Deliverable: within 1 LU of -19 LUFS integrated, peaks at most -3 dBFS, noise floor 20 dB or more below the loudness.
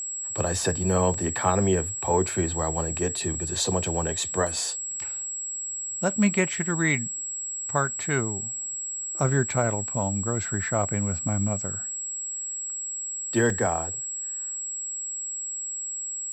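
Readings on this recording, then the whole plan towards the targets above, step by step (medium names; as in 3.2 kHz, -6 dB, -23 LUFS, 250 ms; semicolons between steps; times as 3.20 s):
dropouts 3; longest dropout 2.5 ms; steady tone 7.7 kHz; tone level -30 dBFS; loudness -26.5 LUFS; peak level -8.5 dBFS; loudness target -19.0 LUFS
-> interpolate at 1.14/4.47/13.50 s, 2.5 ms; band-stop 7.7 kHz, Q 30; trim +7.5 dB; peak limiter -3 dBFS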